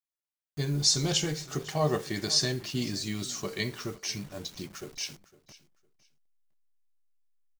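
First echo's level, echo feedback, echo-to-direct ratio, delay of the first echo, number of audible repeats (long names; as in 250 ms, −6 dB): −19.5 dB, 22%, −19.5 dB, 507 ms, 2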